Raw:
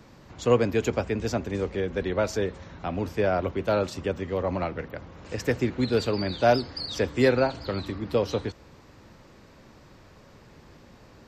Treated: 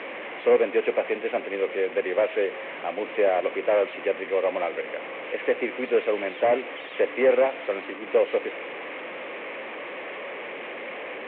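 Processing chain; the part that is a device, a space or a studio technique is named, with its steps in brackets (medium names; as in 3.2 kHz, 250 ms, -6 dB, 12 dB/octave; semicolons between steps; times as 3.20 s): digital answering machine (band-pass 300–3400 Hz; one-bit delta coder 16 kbps, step -33 dBFS; cabinet simulation 400–3400 Hz, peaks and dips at 510 Hz +4 dB, 910 Hz -5 dB, 1.4 kHz -7 dB, 2.2 kHz +6 dB); trim +4.5 dB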